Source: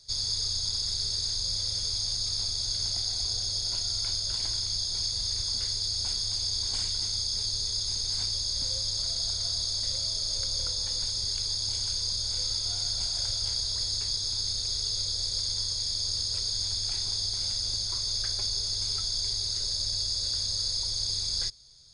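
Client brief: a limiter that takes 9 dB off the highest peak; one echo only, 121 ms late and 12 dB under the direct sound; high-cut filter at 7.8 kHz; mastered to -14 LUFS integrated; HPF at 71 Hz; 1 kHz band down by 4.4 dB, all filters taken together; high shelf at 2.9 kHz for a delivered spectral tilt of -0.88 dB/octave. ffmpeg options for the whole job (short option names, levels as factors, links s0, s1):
-af "highpass=71,lowpass=7800,equalizer=f=1000:t=o:g=-5.5,highshelf=f=2900:g=-3.5,alimiter=level_in=1.78:limit=0.0631:level=0:latency=1,volume=0.562,aecho=1:1:121:0.251,volume=11.2"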